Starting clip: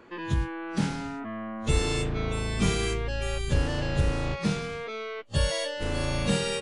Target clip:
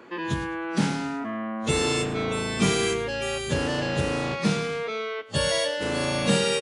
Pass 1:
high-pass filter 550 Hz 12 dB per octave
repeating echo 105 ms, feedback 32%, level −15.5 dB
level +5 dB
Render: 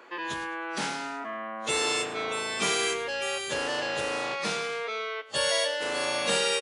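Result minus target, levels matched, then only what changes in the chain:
125 Hz band −16.0 dB
change: high-pass filter 160 Hz 12 dB per octave

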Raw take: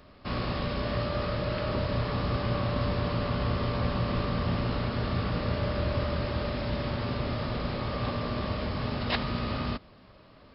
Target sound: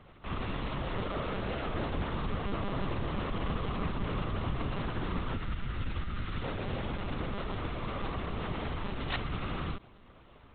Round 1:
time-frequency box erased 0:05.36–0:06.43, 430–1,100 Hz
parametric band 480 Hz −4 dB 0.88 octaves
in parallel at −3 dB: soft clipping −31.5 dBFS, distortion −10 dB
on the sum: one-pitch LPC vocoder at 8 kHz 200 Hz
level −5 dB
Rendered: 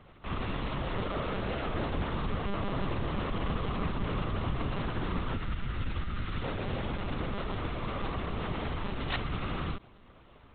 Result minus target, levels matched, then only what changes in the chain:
soft clipping: distortion −4 dB
change: soft clipping −39 dBFS, distortion −6 dB

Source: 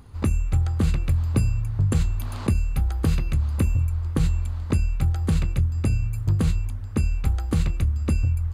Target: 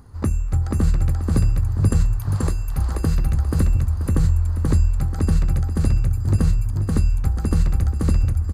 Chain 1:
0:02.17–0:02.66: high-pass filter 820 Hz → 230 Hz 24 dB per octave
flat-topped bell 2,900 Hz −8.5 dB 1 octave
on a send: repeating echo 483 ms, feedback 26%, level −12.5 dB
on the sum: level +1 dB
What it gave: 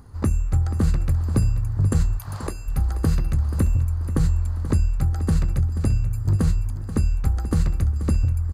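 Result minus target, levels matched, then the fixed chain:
echo-to-direct −10.5 dB
0:02.17–0:02.66: high-pass filter 820 Hz → 230 Hz 24 dB per octave
flat-topped bell 2,900 Hz −8.5 dB 1 octave
on a send: repeating echo 483 ms, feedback 26%, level −2 dB
on the sum: level +1 dB

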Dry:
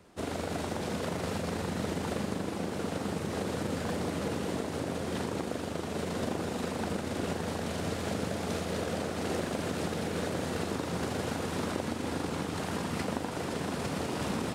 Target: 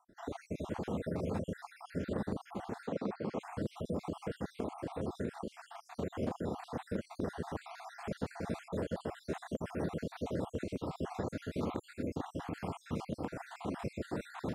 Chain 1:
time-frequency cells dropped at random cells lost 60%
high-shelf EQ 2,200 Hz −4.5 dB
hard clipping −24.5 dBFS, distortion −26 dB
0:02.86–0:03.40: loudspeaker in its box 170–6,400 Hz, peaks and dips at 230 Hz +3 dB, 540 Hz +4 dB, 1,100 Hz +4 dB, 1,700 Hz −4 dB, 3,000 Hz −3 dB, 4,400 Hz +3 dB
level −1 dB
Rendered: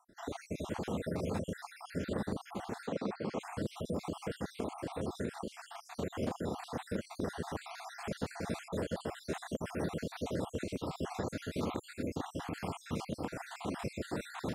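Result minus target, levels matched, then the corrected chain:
4,000 Hz band +5.5 dB
time-frequency cells dropped at random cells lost 60%
high-shelf EQ 2,200 Hz −12.5 dB
hard clipping −24.5 dBFS, distortion −27 dB
0:02.86–0:03.40: loudspeaker in its box 170–6,400 Hz, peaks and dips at 230 Hz +3 dB, 540 Hz +4 dB, 1,100 Hz +4 dB, 1,700 Hz −4 dB, 3,000 Hz −3 dB, 4,400 Hz +3 dB
level −1 dB

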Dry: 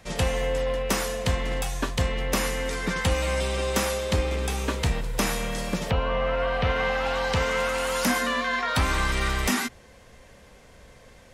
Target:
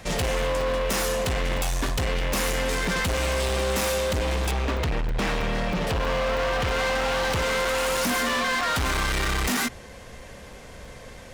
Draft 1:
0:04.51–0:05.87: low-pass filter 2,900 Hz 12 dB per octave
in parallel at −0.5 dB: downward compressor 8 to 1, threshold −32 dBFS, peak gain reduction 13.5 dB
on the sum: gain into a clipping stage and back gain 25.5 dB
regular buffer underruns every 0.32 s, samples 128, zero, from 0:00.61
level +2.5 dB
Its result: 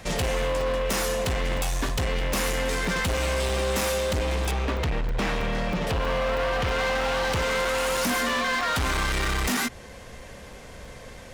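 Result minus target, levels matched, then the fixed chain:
downward compressor: peak gain reduction +9 dB
0:04.51–0:05.87: low-pass filter 2,900 Hz 12 dB per octave
in parallel at −0.5 dB: downward compressor 8 to 1, threshold −21.5 dBFS, peak gain reduction 4 dB
on the sum: gain into a clipping stage and back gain 25.5 dB
regular buffer underruns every 0.32 s, samples 128, zero, from 0:00.61
level +2.5 dB

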